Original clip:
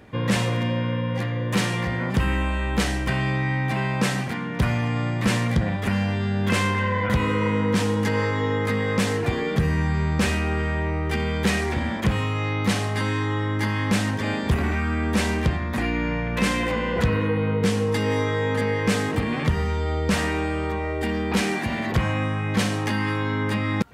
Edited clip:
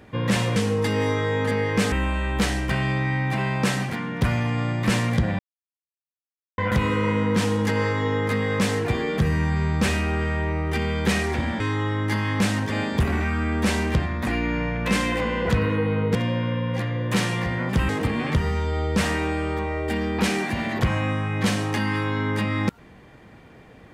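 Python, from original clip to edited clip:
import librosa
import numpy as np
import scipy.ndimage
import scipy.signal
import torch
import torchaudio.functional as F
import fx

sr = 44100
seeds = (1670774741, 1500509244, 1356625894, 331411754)

y = fx.edit(x, sr, fx.swap(start_s=0.56, length_s=1.74, other_s=17.66, other_length_s=1.36),
    fx.silence(start_s=5.77, length_s=1.19),
    fx.cut(start_s=11.98, length_s=1.13), tone=tone)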